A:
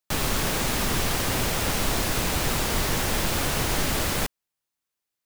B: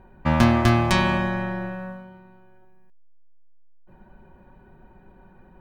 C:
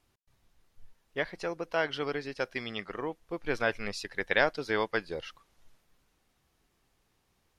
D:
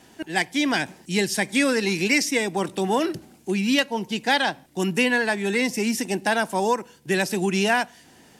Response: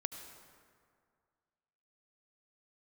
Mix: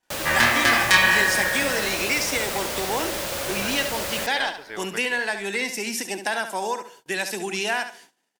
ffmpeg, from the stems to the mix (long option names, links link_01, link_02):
-filter_complex "[0:a]highpass=43,equalizer=frequency=560:width=5.2:gain=12.5,volume=-4dB,asplit=2[link_01][link_02];[link_02]volume=-10.5dB[link_03];[1:a]equalizer=frequency=1800:width=3.8:gain=10,flanger=delay=20:depth=7.2:speed=1.5,tiltshelf=frequency=940:gain=-7.5,volume=0.5dB,asplit=2[link_04][link_05];[link_05]volume=-6dB[link_06];[2:a]volume=-8dB,asplit=2[link_07][link_08];[link_08]volume=-4dB[link_09];[3:a]highpass=230,acompressor=threshold=-24dB:ratio=2,volume=1dB,asplit=3[link_10][link_11][link_12];[link_11]volume=-19.5dB[link_13];[link_12]volume=-9dB[link_14];[4:a]atrim=start_sample=2205[link_15];[link_03][link_06][link_09][link_13]amix=inputs=4:normalize=0[link_16];[link_16][link_15]afir=irnorm=-1:irlink=0[link_17];[link_14]aecho=0:1:70|140|210|280:1|0.27|0.0729|0.0197[link_18];[link_01][link_04][link_07][link_10][link_17][link_18]amix=inputs=6:normalize=0,agate=range=-28dB:threshold=-46dB:ratio=16:detection=peak,lowshelf=frequency=480:gain=-9.5"